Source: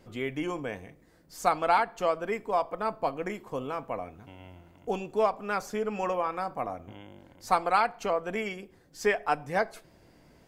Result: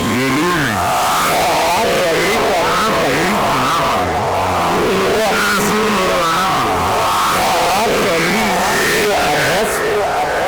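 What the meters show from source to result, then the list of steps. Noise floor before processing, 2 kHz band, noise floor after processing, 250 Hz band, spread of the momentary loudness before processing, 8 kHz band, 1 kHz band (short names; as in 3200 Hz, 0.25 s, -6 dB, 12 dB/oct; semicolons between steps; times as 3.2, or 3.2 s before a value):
-60 dBFS, +20.0 dB, -16 dBFS, +18.5 dB, 18 LU, +26.5 dB, +16.0 dB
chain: spectral swells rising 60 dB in 1.90 s; HPF 51 Hz 12 dB/oct; envelope phaser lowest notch 300 Hz, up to 1700 Hz, full sweep at -16.5 dBFS; band-limited delay 0.899 s, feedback 59%, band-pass 770 Hz, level -13 dB; fuzz box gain 45 dB, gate -55 dBFS; Opus 64 kbps 48000 Hz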